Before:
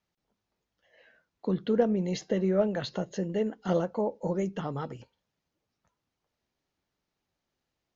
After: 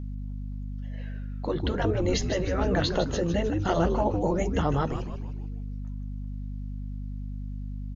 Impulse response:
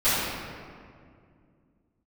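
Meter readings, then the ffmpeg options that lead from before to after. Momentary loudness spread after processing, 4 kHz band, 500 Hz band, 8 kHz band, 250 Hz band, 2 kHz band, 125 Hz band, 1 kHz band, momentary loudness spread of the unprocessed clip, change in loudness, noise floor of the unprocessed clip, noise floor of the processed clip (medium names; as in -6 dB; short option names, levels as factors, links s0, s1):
12 LU, +8.5 dB, +1.5 dB, no reading, +2.0 dB, +8.5 dB, +7.5 dB, +7.5 dB, 10 LU, +0.5 dB, -85 dBFS, -34 dBFS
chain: -filter_complex "[0:a]asplit=6[s0][s1][s2][s3][s4][s5];[s1]adelay=154,afreqshift=-120,volume=0.335[s6];[s2]adelay=308,afreqshift=-240,volume=0.164[s7];[s3]adelay=462,afreqshift=-360,volume=0.0804[s8];[s4]adelay=616,afreqshift=-480,volume=0.0394[s9];[s5]adelay=770,afreqshift=-600,volume=0.0193[s10];[s0][s6][s7][s8][s9][s10]amix=inputs=6:normalize=0,aeval=exprs='val(0)+0.00891*(sin(2*PI*50*n/s)+sin(2*PI*2*50*n/s)/2+sin(2*PI*3*50*n/s)/3+sin(2*PI*4*50*n/s)/4+sin(2*PI*5*50*n/s)/5)':c=same,afftfilt=real='re*lt(hypot(re,im),0.282)':imag='im*lt(hypot(re,im),0.282)':win_size=1024:overlap=0.75,volume=2.51"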